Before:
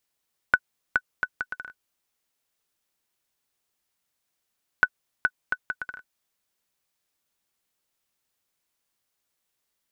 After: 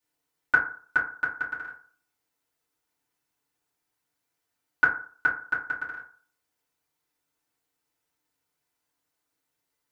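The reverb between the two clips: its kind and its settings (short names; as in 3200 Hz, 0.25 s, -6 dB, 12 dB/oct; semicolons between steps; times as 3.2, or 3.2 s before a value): FDN reverb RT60 0.46 s, low-frequency decay 0.9×, high-frequency decay 0.4×, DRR -9.5 dB; gain -9 dB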